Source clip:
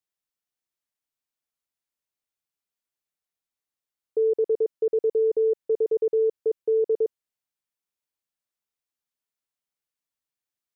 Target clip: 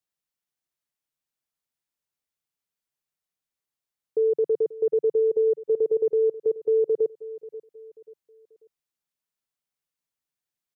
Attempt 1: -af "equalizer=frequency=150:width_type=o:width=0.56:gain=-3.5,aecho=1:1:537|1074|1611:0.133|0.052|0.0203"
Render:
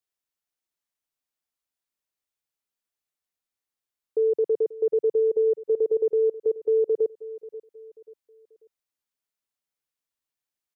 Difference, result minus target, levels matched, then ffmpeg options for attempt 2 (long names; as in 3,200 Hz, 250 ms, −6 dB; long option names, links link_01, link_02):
125 Hz band −5.5 dB
-af "equalizer=frequency=150:width_type=o:width=0.56:gain=5.5,aecho=1:1:537|1074|1611:0.133|0.052|0.0203"